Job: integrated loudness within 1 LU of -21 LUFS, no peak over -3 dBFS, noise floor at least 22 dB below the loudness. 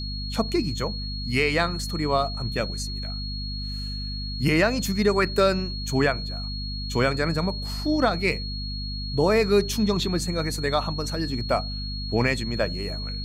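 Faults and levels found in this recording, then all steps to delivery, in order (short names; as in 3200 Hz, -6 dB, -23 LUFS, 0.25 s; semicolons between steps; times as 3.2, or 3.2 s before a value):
hum 50 Hz; harmonics up to 250 Hz; hum level -30 dBFS; steady tone 4300 Hz; tone level -34 dBFS; loudness -25.5 LUFS; peak -9.0 dBFS; loudness target -21.0 LUFS
-> notches 50/100/150/200/250 Hz; notch 4300 Hz, Q 30; gain +4.5 dB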